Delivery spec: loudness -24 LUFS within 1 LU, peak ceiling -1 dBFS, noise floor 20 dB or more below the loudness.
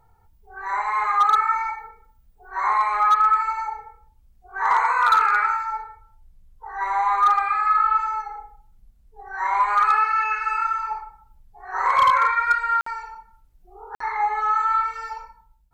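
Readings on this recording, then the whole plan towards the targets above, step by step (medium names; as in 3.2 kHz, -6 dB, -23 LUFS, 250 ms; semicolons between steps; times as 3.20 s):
clipped samples 0.3%; clipping level -11.0 dBFS; dropouts 2; longest dropout 54 ms; loudness -20.5 LUFS; peak level -11.0 dBFS; loudness target -24.0 LUFS
-> clip repair -11 dBFS; interpolate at 12.81/13.95 s, 54 ms; trim -3.5 dB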